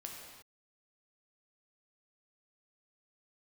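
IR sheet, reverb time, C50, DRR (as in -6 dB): not exponential, 1.0 dB, -1.0 dB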